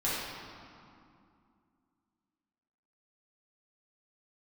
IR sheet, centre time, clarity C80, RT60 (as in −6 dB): 133 ms, 0.0 dB, 2.4 s